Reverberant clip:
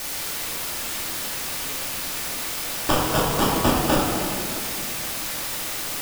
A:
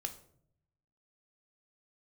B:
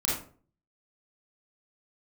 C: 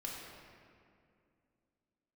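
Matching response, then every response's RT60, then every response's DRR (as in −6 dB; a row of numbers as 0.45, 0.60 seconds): C; 0.65, 0.45, 2.4 seconds; 6.5, −6.0, −3.5 decibels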